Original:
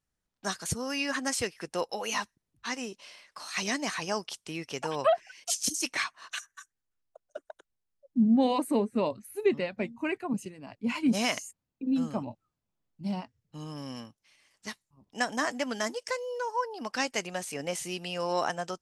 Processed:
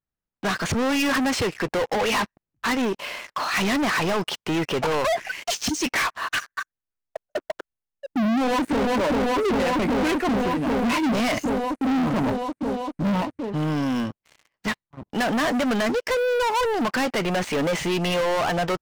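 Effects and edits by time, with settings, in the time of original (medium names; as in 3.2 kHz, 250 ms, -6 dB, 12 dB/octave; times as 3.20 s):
8.33–8.93 s: echo throw 390 ms, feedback 80%, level -4.5 dB
whole clip: low-pass 2.3 kHz 12 dB/octave; peak limiter -24 dBFS; waveshaping leveller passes 5; trim +4.5 dB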